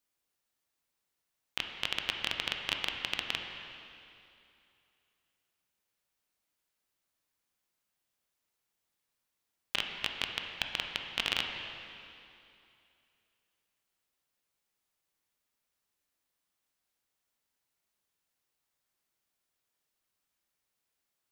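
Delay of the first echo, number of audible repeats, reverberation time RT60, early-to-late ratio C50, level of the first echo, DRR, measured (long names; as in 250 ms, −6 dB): no echo audible, no echo audible, 2.7 s, 3.5 dB, no echo audible, 2.5 dB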